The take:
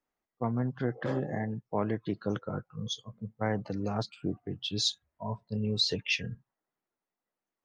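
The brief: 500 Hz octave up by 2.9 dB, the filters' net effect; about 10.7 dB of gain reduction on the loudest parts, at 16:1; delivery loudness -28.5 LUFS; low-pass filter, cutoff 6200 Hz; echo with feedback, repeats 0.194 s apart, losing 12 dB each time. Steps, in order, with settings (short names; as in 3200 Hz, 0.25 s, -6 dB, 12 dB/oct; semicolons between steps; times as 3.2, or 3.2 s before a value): LPF 6200 Hz; bell 500 Hz +3.5 dB; compressor 16:1, threshold -34 dBFS; feedback echo 0.194 s, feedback 25%, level -12 dB; gain +11.5 dB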